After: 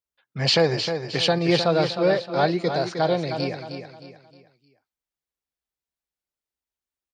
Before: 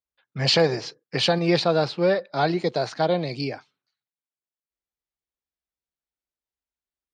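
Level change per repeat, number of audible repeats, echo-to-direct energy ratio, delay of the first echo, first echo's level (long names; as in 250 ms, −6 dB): −8.5 dB, 4, −7.5 dB, 310 ms, −8.0 dB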